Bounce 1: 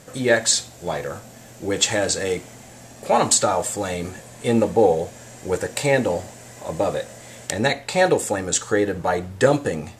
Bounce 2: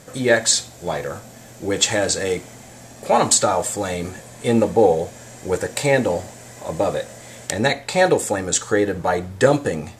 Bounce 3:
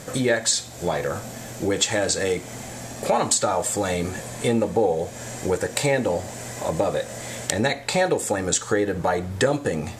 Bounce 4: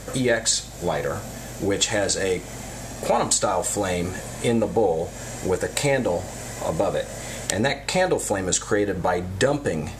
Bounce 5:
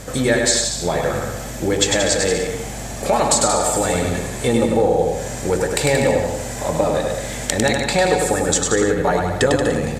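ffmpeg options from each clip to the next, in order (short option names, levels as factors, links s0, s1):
-af "bandreject=f=2800:w=23,volume=1.19"
-af "acompressor=threshold=0.0355:ratio=2.5,volume=2"
-af "aeval=exprs='val(0)+0.00794*(sin(2*PI*50*n/s)+sin(2*PI*2*50*n/s)/2+sin(2*PI*3*50*n/s)/3+sin(2*PI*4*50*n/s)/4+sin(2*PI*5*50*n/s)/5)':c=same"
-af "aecho=1:1:100|180|244|295.2|336.2:0.631|0.398|0.251|0.158|0.1,volume=1.41"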